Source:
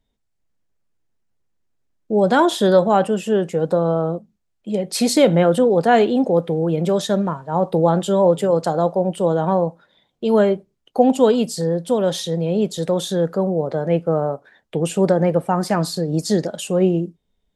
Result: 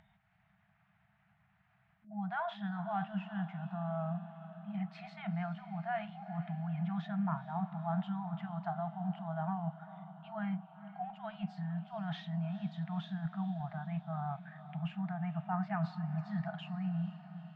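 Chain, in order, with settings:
loudspeaker in its box 140–2,300 Hz, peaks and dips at 380 Hz −6 dB, 600 Hz −4 dB, 1,000 Hz −6 dB
reversed playback
downward compressor 10 to 1, threshold −26 dBFS, peak gain reduction 15.5 dB
reversed playback
feedback delay with all-pass diffusion 460 ms, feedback 64%, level −14 dB
brick-wall band-stop 210–630 Hz
upward compression, threshold −48 dBFS
level −4 dB

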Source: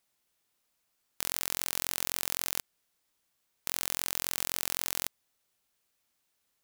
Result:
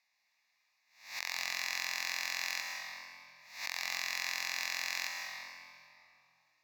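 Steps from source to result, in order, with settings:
peak hold with a rise ahead of every peak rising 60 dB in 0.48 s
in parallel at +1.5 dB: brickwall limiter −9.5 dBFS, peak gain reduction 7.5 dB
on the sum: resonant band-pass 2,200 Hz, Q 1.1
phaser with its sweep stopped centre 2,100 Hz, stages 8
convolution reverb RT60 2.7 s, pre-delay 105 ms, DRR 0.5 dB
level +1.5 dB

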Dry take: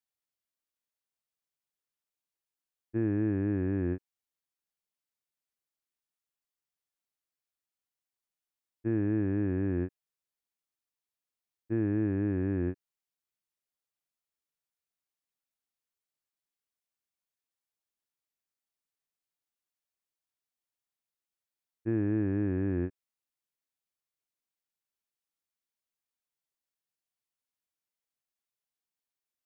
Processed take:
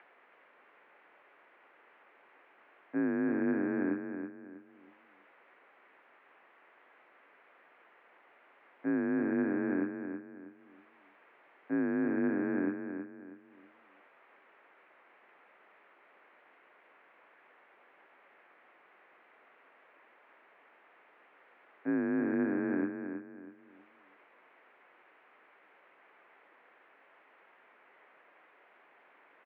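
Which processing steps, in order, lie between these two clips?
upward compression, threshold −34 dBFS
repeating echo 322 ms, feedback 32%, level −7.5 dB
single-sideband voice off tune −64 Hz 400–2,300 Hz
level +7 dB

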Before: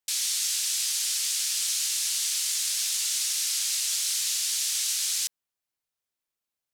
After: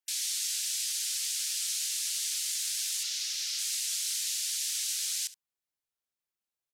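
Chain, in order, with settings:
gate on every frequency bin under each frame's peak −25 dB strong
0:03.03–0:03.59: high shelf with overshoot 6,800 Hz −6.5 dB, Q 1.5
single-tap delay 70 ms −17.5 dB
level −5 dB

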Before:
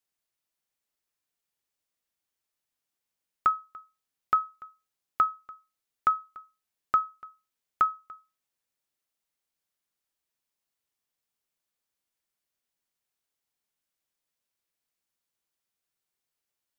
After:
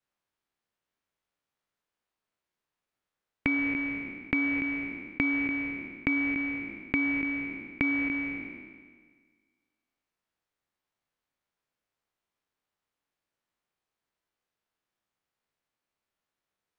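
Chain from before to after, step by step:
peak hold with a decay on every bin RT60 1.65 s
low-pass filter 1,400 Hz 6 dB per octave
downward compressor 4 to 1, threshold −30 dBFS, peak gain reduction 8.5 dB
ring modulation 1,000 Hz
level +6.5 dB

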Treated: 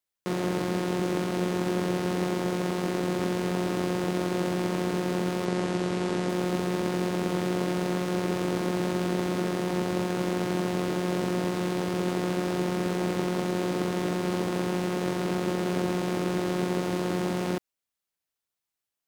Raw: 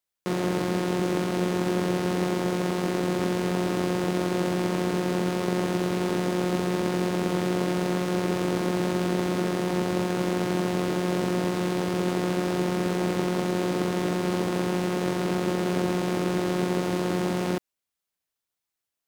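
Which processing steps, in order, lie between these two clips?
0:05.45–0:06.29: low-pass filter 9,900 Hz 24 dB per octave
level −2 dB

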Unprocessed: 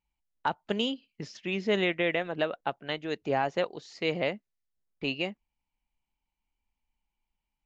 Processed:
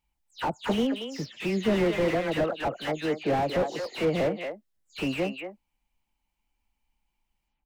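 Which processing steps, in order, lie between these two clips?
every frequency bin delayed by itself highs early, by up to 172 ms
far-end echo of a speakerphone 230 ms, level −9 dB
slew-rate limiting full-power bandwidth 24 Hz
level +6 dB

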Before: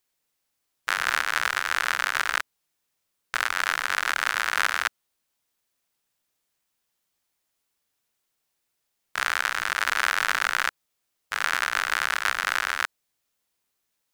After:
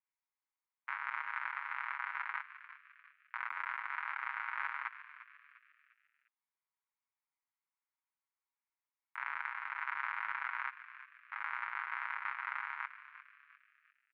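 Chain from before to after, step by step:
elliptic band-pass filter 920–2,200 Hz, stop band 70 dB
parametric band 1,600 Hz −15 dB 1.6 octaves
comb filter 7.3 ms, depth 53%
echo with shifted repeats 350 ms, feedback 40%, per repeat +97 Hz, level −14 dB
level −1 dB

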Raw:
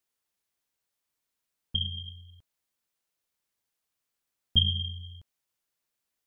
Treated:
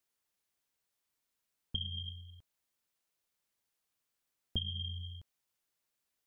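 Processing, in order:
downward compressor 6 to 1, threshold −33 dBFS, peak gain reduction 15 dB
level −1 dB

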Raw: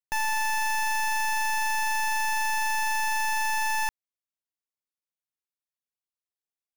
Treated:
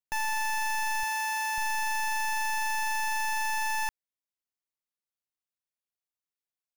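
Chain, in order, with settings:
0:01.03–0:01.58: high-pass filter 60 Hz 6 dB per octave
level −3 dB

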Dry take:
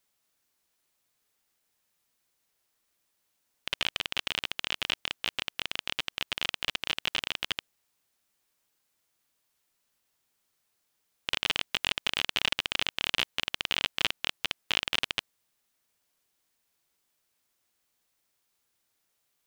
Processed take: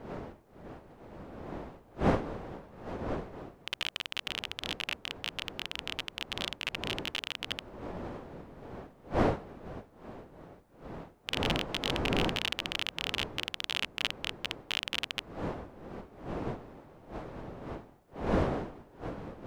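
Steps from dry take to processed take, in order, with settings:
wind on the microphone 560 Hz −34 dBFS
wow of a warped record 33 1/3 rpm, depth 160 cents
level −4.5 dB

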